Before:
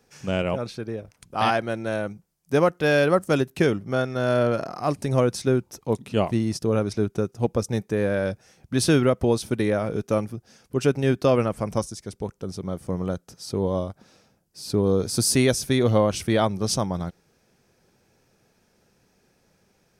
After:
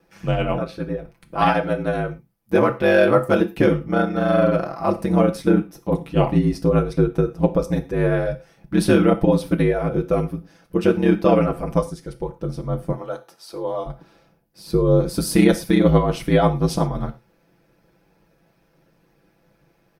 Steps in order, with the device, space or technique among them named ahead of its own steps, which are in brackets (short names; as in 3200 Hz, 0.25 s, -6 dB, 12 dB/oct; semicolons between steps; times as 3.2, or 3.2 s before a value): 12.92–13.86 HPF 530 Hz 12 dB/oct; bell 6900 Hz -14.5 dB 1.4 oct; ring-modulated robot voice (ring modulator 50 Hz; comb 6 ms, depth 79%); non-linear reverb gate 0.14 s falling, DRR 8.5 dB; gain +5 dB